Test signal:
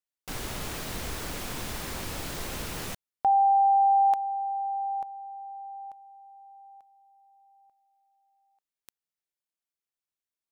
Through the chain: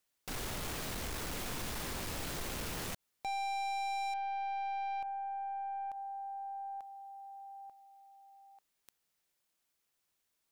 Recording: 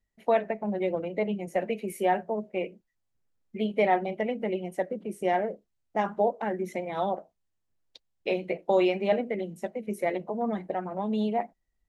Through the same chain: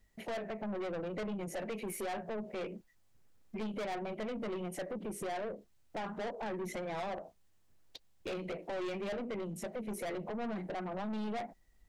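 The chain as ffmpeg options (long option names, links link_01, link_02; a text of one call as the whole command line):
ffmpeg -i in.wav -af "alimiter=limit=-18dB:level=0:latency=1:release=440,aeval=exprs='(tanh(50.1*val(0)+0.2)-tanh(0.2))/50.1':channel_layout=same,acompressor=threshold=-52dB:ratio=3:attack=0.32:release=121:detection=peak,volume=11.5dB" out.wav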